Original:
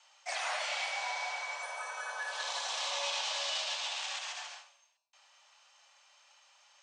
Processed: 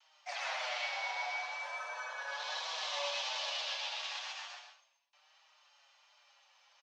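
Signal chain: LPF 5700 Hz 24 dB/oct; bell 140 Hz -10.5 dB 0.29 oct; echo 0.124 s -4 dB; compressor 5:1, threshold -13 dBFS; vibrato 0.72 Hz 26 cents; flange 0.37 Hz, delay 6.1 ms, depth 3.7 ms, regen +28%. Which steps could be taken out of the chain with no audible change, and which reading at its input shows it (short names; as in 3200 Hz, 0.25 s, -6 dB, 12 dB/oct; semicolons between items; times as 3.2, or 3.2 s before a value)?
bell 140 Hz: input band starts at 450 Hz; compressor, threshold -13 dBFS: input peak -20.5 dBFS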